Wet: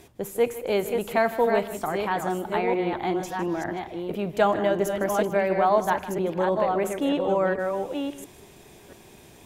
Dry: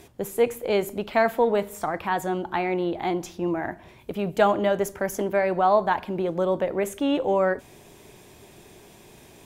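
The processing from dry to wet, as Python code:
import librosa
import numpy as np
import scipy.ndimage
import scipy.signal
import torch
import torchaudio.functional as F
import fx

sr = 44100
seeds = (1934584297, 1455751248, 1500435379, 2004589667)

y = fx.reverse_delay(x, sr, ms=687, wet_db=-5)
y = y + 10.0 ** (-15.0 / 20.0) * np.pad(y, (int(156 * sr / 1000.0), 0))[:len(y)]
y = y * 10.0 ** (-1.5 / 20.0)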